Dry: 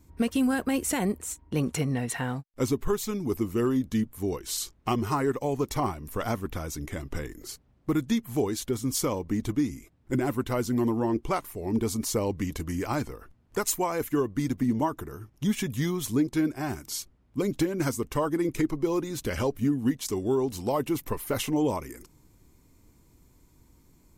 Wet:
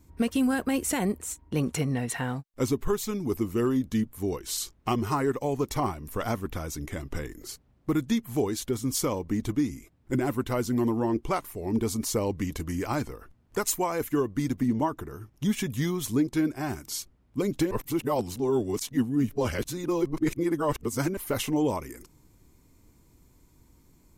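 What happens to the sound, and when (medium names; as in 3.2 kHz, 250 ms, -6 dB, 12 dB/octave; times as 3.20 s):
14.68–15.15 s: treble shelf 6.3 kHz -5.5 dB
17.71–21.17 s: reverse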